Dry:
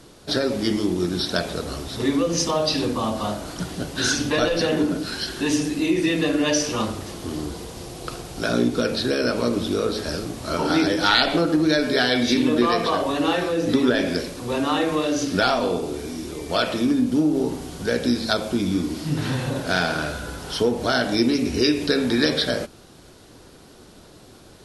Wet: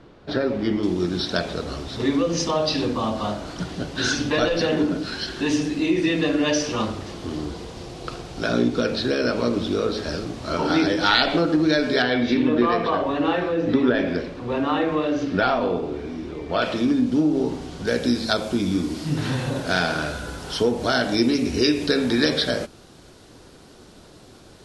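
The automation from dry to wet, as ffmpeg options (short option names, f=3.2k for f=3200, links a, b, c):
-af "asetnsamples=n=441:p=0,asendcmd='0.83 lowpass f 5400;12.02 lowpass f 2600;16.62 lowpass f 5500;17.87 lowpass f 9600',lowpass=2.4k"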